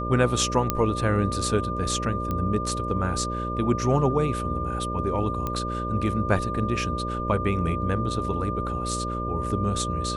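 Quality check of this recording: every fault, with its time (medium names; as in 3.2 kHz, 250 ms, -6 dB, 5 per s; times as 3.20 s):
buzz 60 Hz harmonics 10 -31 dBFS
whine 1.2 kHz -30 dBFS
0.70 s: pop -7 dBFS
2.31 s: pop -16 dBFS
5.47 s: pop -15 dBFS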